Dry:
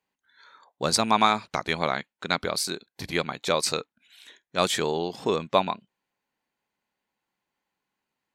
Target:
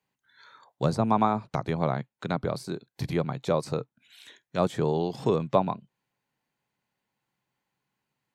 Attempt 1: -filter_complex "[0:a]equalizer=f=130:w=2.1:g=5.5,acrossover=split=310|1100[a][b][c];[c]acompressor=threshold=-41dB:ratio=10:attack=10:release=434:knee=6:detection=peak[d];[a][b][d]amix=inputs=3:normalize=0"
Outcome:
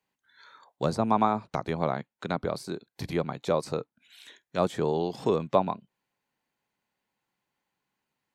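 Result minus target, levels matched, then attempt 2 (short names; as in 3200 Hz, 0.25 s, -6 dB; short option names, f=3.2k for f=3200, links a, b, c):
125 Hz band -3.5 dB
-filter_complex "[0:a]equalizer=f=130:w=2.1:g=13,acrossover=split=310|1100[a][b][c];[c]acompressor=threshold=-41dB:ratio=10:attack=10:release=434:knee=6:detection=peak[d];[a][b][d]amix=inputs=3:normalize=0"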